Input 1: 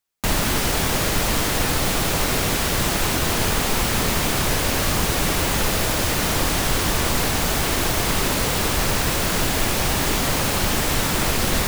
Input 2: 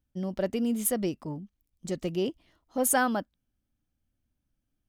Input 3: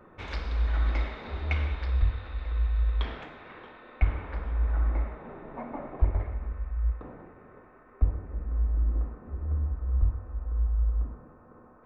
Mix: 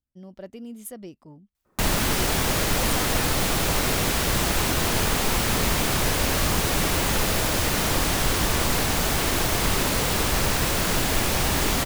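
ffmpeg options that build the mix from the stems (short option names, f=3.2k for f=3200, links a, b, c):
-filter_complex "[0:a]adelay=1550,volume=-2dB[a];[1:a]volume=-10.5dB,asplit=2[b][c];[2:a]adelay=1650,volume=-10.5dB[d];[c]apad=whole_len=595533[e];[d][e]sidechaincompress=threshold=-50dB:ratio=8:attack=16:release=670[f];[a][b][f]amix=inputs=3:normalize=0"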